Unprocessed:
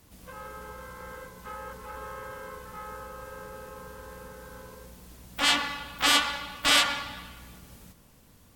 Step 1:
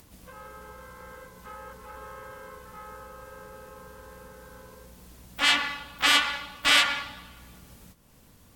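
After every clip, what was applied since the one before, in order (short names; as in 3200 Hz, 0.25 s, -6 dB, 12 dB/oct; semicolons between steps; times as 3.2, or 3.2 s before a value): gate -51 dBFS, range -7 dB; dynamic EQ 2100 Hz, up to +7 dB, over -37 dBFS, Q 0.86; upward compressor, threshold -41 dBFS; gain -3 dB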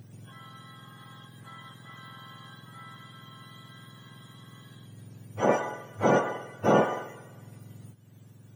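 spectrum mirrored in octaves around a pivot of 1300 Hz; bell 2700 Hz +2.5 dB; gain -2.5 dB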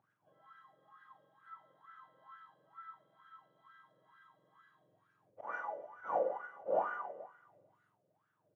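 auto swell 0.127 s; reverse bouncing-ball echo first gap 40 ms, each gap 1.4×, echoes 5; wah 2.2 Hz 530–1500 Hz, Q 8.7; gain -1.5 dB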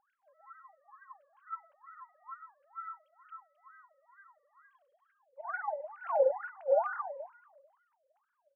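sine-wave speech; gain +6 dB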